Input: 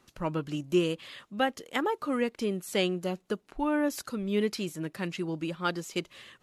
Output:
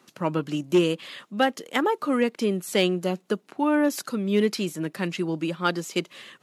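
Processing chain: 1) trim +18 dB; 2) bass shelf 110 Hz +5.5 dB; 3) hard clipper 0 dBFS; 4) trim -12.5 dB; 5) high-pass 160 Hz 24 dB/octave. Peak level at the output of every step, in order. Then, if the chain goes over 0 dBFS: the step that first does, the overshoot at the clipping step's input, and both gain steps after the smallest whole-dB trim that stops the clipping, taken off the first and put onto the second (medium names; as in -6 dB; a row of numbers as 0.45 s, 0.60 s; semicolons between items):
+4.0 dBFS, +4.0 dBFS, 0.0 dBFS, -12.5 dBFS, -8.0 dBFS; step 1, 4.0 dB; step 1 +14 dB, step 4 -8.5 dB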